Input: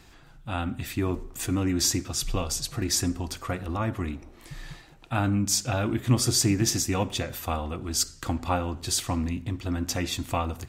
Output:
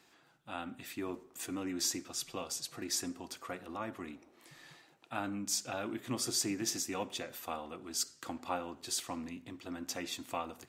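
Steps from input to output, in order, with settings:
high-pass filter 260 Hz 12 dB per octave
level −9 dB

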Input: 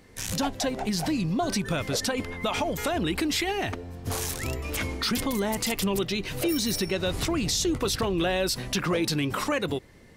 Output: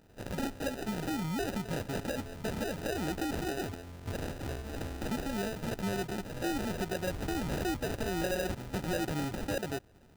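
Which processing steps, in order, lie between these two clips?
sample-rate reduction 1,100 Hz, jitter 0%
level that may rise only so fast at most 430 dB per second
level −7 dB

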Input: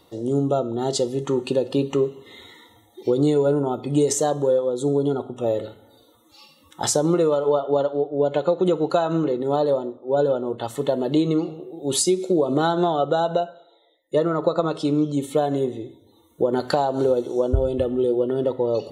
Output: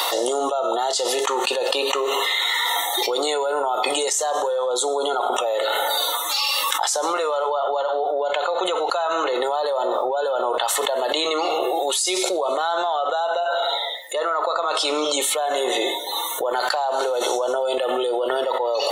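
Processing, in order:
high-pass filter 710 Hz 24 dB per octave
envelope flattener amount 100%
level −2.5 dB

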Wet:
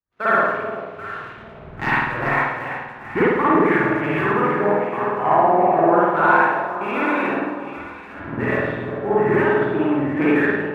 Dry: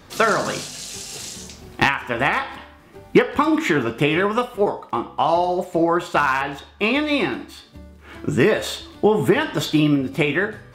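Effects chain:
camcorder AGC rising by 13 dB per second
low-pass filter 1,800 Hz 24 dB per octave
tilt shelving filter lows −5.5 dB, about 1,100 Hz
on a send: delay that swaps between a low-pass and a high-pass 393 ms, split 880 Hz, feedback 69%, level −3.5 dB
on the sum: leveller curve on the samples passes 1
spring reverb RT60 1.4 s, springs 50 ms, chirp 25 ms, DRR −6.5 dB
multiband upward and downward expander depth 100%
level −8 dB

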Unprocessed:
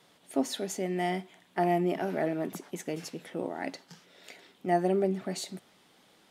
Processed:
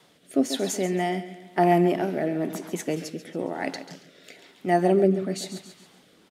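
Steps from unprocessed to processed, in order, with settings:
repeating echo 138 ms, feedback 41%, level −12 dB
rotating-speaker cabinet horn 1 Hz
level +7.5 dB

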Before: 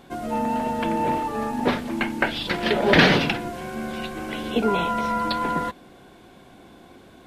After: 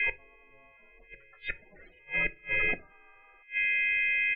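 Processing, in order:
echo ahead of the sound 268 ms −20.5 dB
phase-vocoder stretch with locked phases 0.6×
steady tone 2,300 Hz −31 dBFS
ring modulation 210 Hz
spectral peaks only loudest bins 16
gate with flip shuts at −23 dBFS, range −32 dB
octave-band graphic EQ 125/250/1,000/2,000/4,000/8,000 Hz −5/−3/−6/+10/+7/−12 dB
pitch-shifted copies added −4 semitones −8 dB, +4 semitones −18 dB
on a send at −12 dB: convolution reverb RT60 0.25 s, pre-delay 4 ms

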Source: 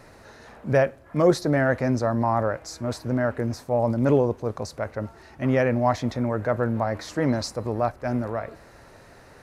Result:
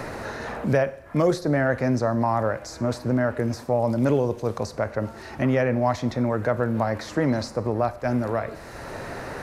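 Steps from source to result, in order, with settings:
four-comb reverb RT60 0.57 s, combs from 32 ms, DRR 16.5 dB
multiband upward and downward compressor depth 70%

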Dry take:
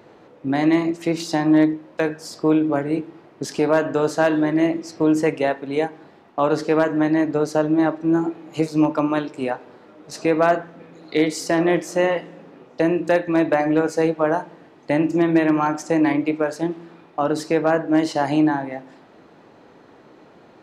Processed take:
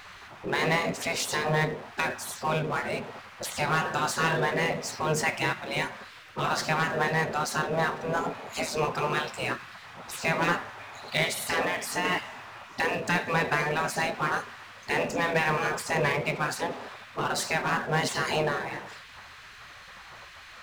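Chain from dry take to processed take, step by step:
gate on every frequency bin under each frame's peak −15 dB weak
0:11.61–0:12.05: downward compressor, threshold −30 dBFS, peak gain reduction 6 dB
power curve on the samples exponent 0.7

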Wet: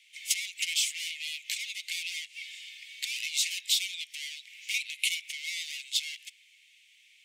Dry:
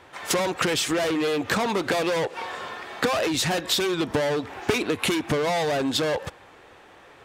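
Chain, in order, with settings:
Chebyshev high-pass with heavy ripple 2,100 Hz, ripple 3 dB

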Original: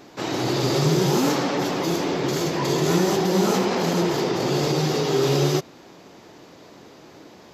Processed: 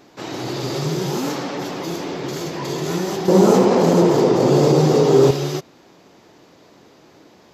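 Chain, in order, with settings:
0:03.28–0:05.31: octave-band graphic EQ 125/250/500/1,000/8,000 Hz +9/+8/+11/+6/+6 dB
level −3 dB

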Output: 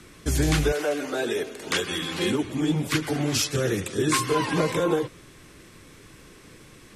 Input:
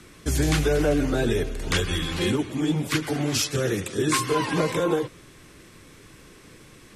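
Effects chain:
0:00.71–0:02.42: high-pass filter 560 Hz → 150 Hz 12 dB per octave

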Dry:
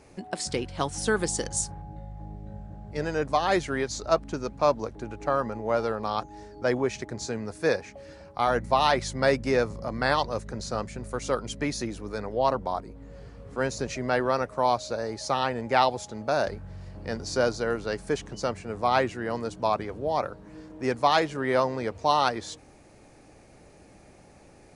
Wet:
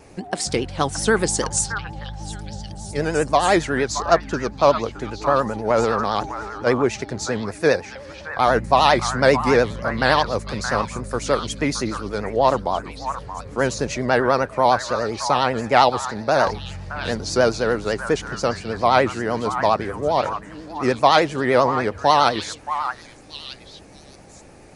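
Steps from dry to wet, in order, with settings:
echo through a band-pass that steps 623 ms, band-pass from 1,300 Hz, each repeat 1.4 octaves, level −5 dB
0:05.70–0:06.67: transient designer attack −6 dB, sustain +6 dB
pitch vibrato 10 Hz 91 cents
level +7 dB

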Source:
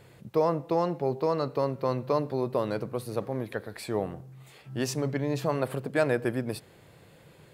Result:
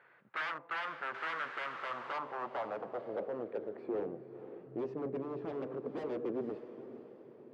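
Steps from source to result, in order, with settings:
0:01.14–0:02.11: bit-depth reduction 6 bits, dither triangular
band-pass filter 140–2,400 Hz
wave folding −28.5 dBFS
on a send: feedback delay with all-pass diffusion 482 ms, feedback 42%, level −11.5 dB
on the sum: band-pass filter sweep 1,500 Hz → 390 Hz, 0:01.61–0:03.81
level +3.5 dB

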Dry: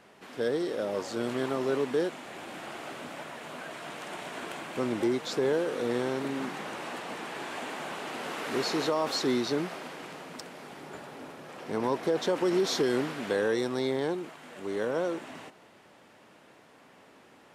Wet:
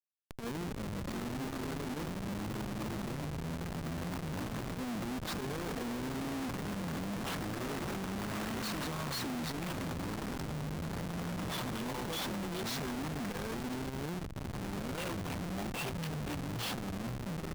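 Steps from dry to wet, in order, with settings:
adaptive Wiener filter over 9 samples
low-shelf EQ 270 Hz +3 dB
delay with a high-pass on its return 326 ms, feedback 49%, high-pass 5,500 Hz, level −10 dB
downward compressor 12 to 1, threshold −24 dBFS, peak gain reduction 4 dB
flat-topped bell 530 Hz −11 dB
delay with pitch and tempo change per echo 631 ms, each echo −4 semitones, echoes 2
comparator with hysteresis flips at −39 dBFS
upward compression, threshold −41 dBFS
saturating transformer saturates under 220 Hz

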